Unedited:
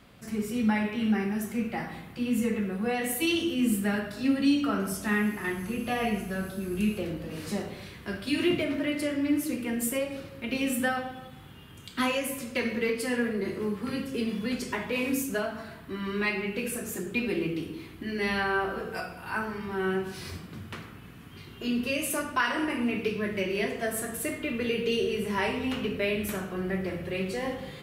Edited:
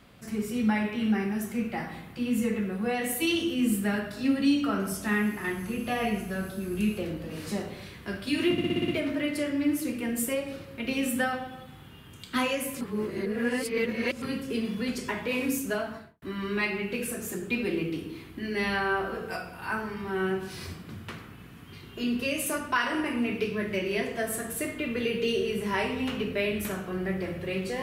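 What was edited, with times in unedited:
8.52 stutter 0.06 s, 7 plays
12.45–13.86 reverse
15.52–15.86 studio fade out

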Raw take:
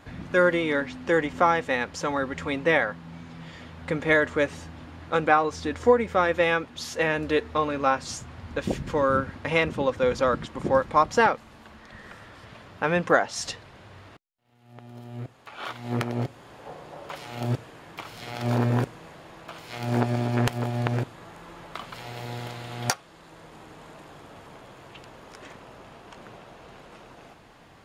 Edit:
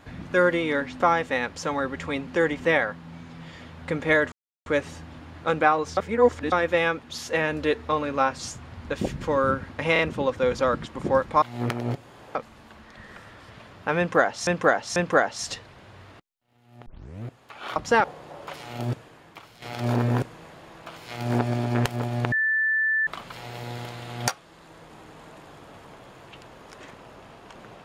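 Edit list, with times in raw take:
1–1.38 move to 2.65
4.32 insert silence 0.34 s
5.63–6.18 reverse
9.59 stutter 0.03 s, 3 plays
11.02–11.3 swap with 15.73–16.66
12.93–13.42 loop, 3 plays
14.83 tape start 0.38 s
17.3–18.24 fade out linear, to -11 dB
20.94–21.69 bleep 1760 Hz -20 dBFS

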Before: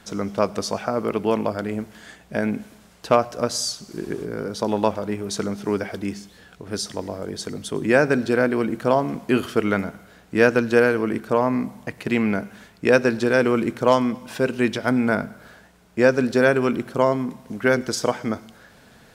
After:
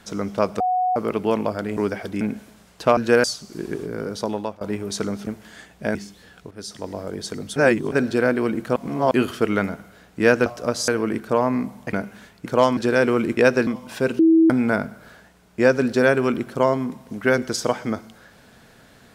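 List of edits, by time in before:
0.6–0.96 bleep 735 Hz -17.5 dBFS
1.77–2.45 swap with 5.66–6.1
3.21–3.63 swap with 10.61–10.88
4.55–5 fade out, to -21 dB
6.66–7.15 fade in, from -13.5 dB
7.71–8.07 reverse
8.91–9.26 reverse
11.93–12.32 cut
12.85–13.15 swap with 13.75–14.06
14.58–14.89 bleep 325 Hz -10.5 dBFS

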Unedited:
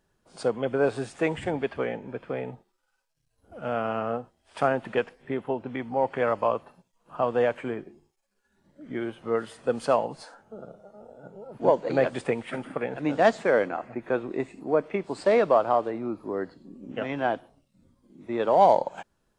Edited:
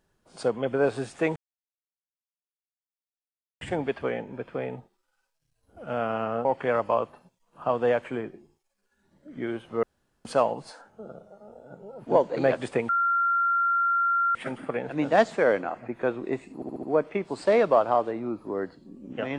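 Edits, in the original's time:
1.36 insert silence 2.25 s
4.2–5.98 cut
9.36–9.78 room tone
12.42 add tone 1380 Hz -20.5 dBFS 1.46 s
14.62 stutter 0.07 s, 5 plays

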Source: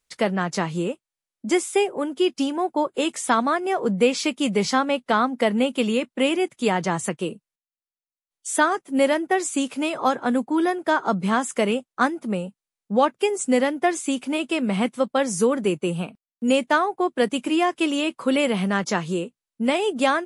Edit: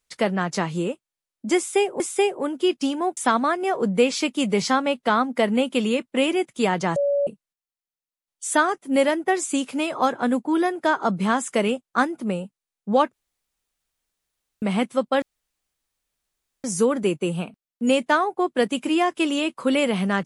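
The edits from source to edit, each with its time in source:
1.57–2 loop, 2 plays
2.74–3.2 cut
6.99–7.3 bleep 568 Hz -18 dBFS
13.16–14.65 room tone
15.25 insert room tone 1.42 s

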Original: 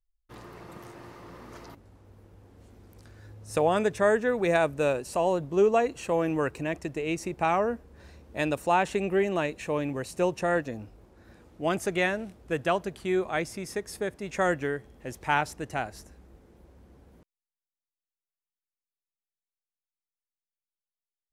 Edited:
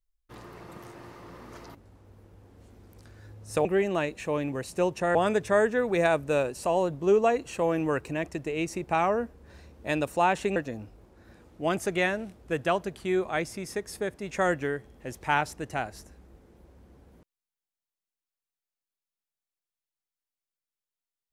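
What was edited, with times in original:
9.06–10.56 move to 3.65

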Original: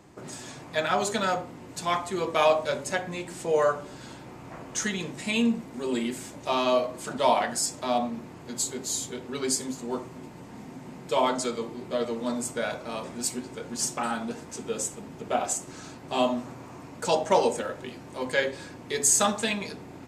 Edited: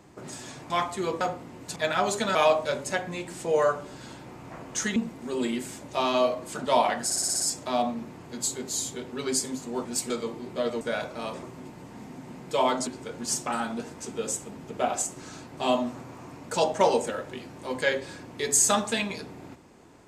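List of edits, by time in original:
0.7–1.29 swap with 1.84–2.35
4.96–5.48 cut
7.56 stutter 0.06 s, 7 plays
10.01–11.45 swap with 13.13–13.38
12.16–12.51 cut

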